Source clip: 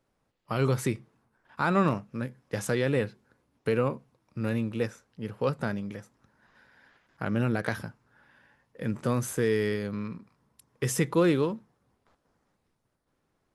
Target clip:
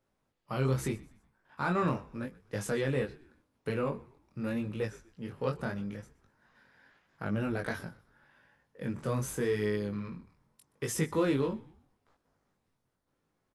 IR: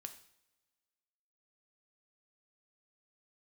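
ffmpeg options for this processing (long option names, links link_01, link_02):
-filter_complex "[0:a]flanger=delay=19:depth=4:speed=0.82,asplit=2[link_01][link_02];[link_02]asoftclip=type=tanh:threshold=-31dB,volume=-9.5dB[link_03];[link_01][link_03]amix=inputs=2:normalize=0,asplit=4[link_04][link_05][link_06][link_07];[link_05]adelay=123,afreqshift=-68,volume=-21dB[link_08];[link_06]adelay=246,afreqshift=-136,volume=-29.6dB[link_09];[link_07]adelay=369,afreqshift=-204,volume=-38.3dB[link_10];[link_04][link_08][link_09][link_10]amix=inputs=4:normalize=0,volume=-3dB"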